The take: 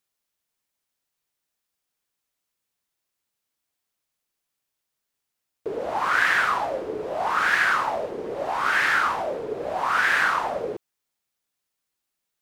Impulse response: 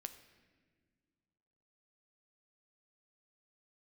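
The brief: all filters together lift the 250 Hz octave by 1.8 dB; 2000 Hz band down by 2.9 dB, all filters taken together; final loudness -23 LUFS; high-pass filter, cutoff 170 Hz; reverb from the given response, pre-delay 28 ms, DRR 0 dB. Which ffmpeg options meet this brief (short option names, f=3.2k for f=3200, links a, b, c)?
-filter_complex "[0:a]highpass=170,equalizer=f=250:t=o:g=3.5,equalizer=f=2k:t=o:g=-4,asplit=2[a][b];[1:a]atrim=start_sample=2205,adelay=28[c];[b][c]afir=irnorm=-1:irlink=0,volume=4dB[d];[a][d]amix=inputs=2:normalize=0,volume=-1dB"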